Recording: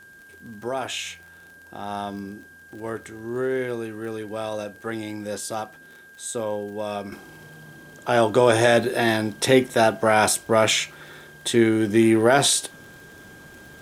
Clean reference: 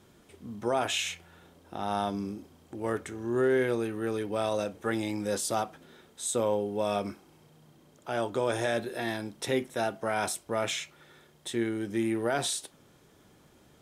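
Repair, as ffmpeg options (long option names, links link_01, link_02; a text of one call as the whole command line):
ffmpeg -i in.wav -af "adeclick=threshold=4,bandreject=frequency=1600:width=30,agate=range=-21dB:threshold=-40dB,asetnsamples=nb_out_samples=441:pad=0,asendcmd='7.12 volume volume -12dB',volume=0dB" out.wav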